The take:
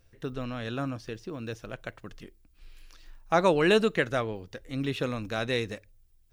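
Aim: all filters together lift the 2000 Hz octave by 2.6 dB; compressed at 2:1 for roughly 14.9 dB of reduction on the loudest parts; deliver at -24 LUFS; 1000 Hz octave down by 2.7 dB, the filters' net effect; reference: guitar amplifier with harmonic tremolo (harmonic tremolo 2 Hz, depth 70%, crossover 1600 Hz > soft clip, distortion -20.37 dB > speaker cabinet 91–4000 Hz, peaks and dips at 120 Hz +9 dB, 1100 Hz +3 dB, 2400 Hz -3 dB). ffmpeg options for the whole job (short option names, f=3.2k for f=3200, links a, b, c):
-filter_complex "[0:a]equalizer=f=1k:t=o:g=-7,equalizer=f=2k:t=o:g=6.5,acompressor=threshold=-47dB:ratio=2,acrossover=split=1600[a][b];[a]aeval=exprs='val(0)*(1-0.7/2+0.7/2*cos(2*PI*2*n/s))':c=same[c];[b]aeval=exprs='val(0)*(1-0.7/2-0.7/2*cos(2*PI*2*n/s))':c=same[d];[c][d]amix=inputs=2:normalize=0,asoftclip=threshold=-31.5dB,highpass=91,equalizer=f=120:t=q:w=4:g=9,equalizer=f=1.1k:t=q:w=4:g=3,equalizer=f=2.4k:t=q:w=4:g=-3,lowpass=f=4k:w=0.5412,lowpass=f=4k:w=1.3066,volume=21.5dB"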